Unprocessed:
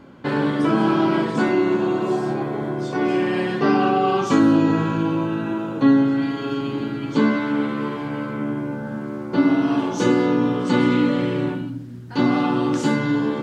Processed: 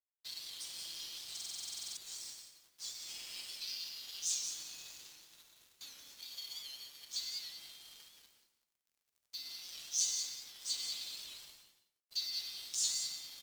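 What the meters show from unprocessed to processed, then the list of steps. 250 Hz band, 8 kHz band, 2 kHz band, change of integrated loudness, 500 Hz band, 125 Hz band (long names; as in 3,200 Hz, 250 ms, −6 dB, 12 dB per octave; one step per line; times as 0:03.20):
below −40 dB, can't be measured, −28.0 dB, −19.0 dB, below −40 dB, below −40 dB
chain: inverse Chebyshev high-pass filter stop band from 1,400 Hz, stop band 60 dB
comb filter 5.9 ms, depth 98%
in parallel at 0 dB: downward compressor, threshold −51 dBFS, peak gain reduction 19 dB
on the sum: dead-zone distortion −49 dBFS
on a send: single-tap delay 178 ms −11 dB
on the sum: reverb whose tail is shaped and stops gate 230 ms flat, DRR 4 dB
buffer that repeats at 0:01.32, samples 2,048, times 13
wow of a warped record 78 rpm, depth 100 cents
level +1 dB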